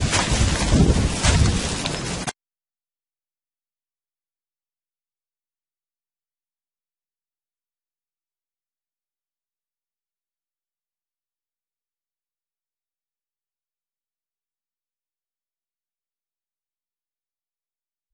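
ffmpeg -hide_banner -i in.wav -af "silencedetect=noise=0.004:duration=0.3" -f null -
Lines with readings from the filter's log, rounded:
silence_start: 2.31
silence_end: 18.13 | silence_duration: 15.82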